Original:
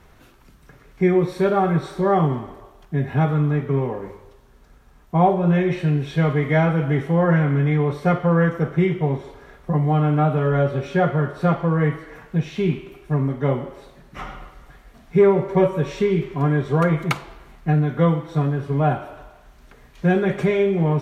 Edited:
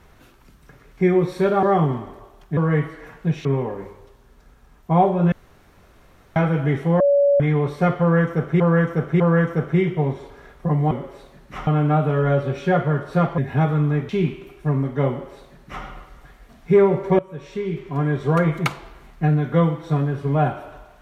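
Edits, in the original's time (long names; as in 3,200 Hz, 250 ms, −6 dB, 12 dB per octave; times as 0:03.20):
0:01.63–0:02.04: remove
0:02.98–0:03.69: swap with 0:11.66–0:12.54
0:05.56–0:06.60: fill with room tone
0:07.24–0:07.64: beep over 567 Hz −12.5 dBFS
0:08.24–0:08.84: repeat, 3 plays
0:13.54–0:14.30: duplicate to 0:09.95
0:15.64–0:16.77: fade in linear, from −19 dB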